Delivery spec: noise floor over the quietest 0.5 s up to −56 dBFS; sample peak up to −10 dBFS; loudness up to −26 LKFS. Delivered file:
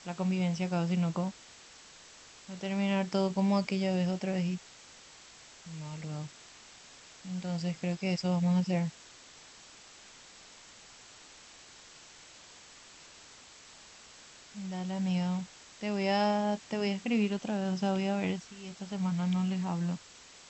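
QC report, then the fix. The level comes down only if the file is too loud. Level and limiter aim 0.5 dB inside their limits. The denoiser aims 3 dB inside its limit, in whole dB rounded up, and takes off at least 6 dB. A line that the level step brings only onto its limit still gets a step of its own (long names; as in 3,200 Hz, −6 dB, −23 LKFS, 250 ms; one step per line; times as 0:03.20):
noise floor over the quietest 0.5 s −54 dBFS: out of spec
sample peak −17.5 dBFS: in spec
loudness −32.0 LKFS: in spec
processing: broadband denoise 6 dB, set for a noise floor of −54 dBFS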